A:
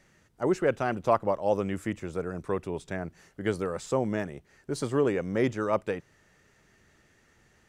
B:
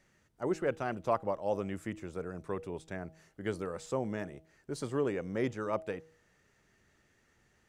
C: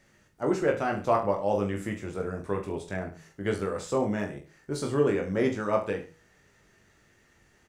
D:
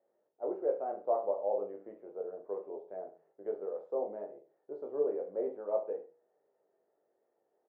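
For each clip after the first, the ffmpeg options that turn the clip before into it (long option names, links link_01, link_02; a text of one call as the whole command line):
ffmpeg -i in.wav -af "bandreject=frequency=159.9:width_type=h:width=4,bandreject=frequency=319.8:width_type=h:width=4,bandreject=frequency=479.7:width_type=h:width=4,bandreject=frequency=639.6:width_type=h:width=4,bandreject=frequency=799.5:width_type=h:width=4,volume=-6.5dB" out.wav
ffmpeg -i in.wav -af "aecho=1:1:20|43|69.45|99.87|134.8:0.631|0.398|0.251|0.158|0.1,volume=5dB" out.wav
ffmpeg -i in.wav -af "asuperpass=centerf=560:order=4:qfactor=1.6,volume=-4.5dB" out.wav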